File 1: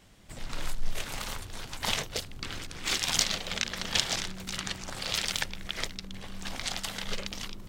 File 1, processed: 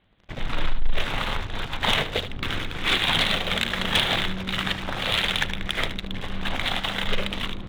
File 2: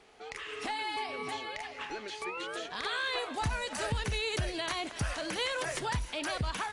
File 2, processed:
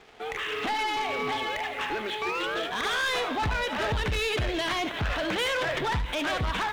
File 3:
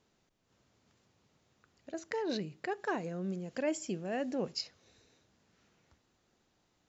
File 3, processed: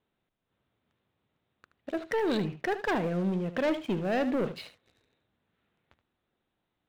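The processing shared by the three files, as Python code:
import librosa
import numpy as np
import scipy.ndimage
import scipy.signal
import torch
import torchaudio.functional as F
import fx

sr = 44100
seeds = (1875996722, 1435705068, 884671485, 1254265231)

y = scipy.signal.sosfilt(scipy.signal.ellip(4, 1.0, 40, 3700.0, 'lowpass', fs=sr, output='sos'), x)
y = fx.leveller(y, sr, passes=3)
y = y + 10.0 ** (-12.5 / 20.0) * np.pad(y, (int(75 * sr / 1000.0), 0))[:len(y)]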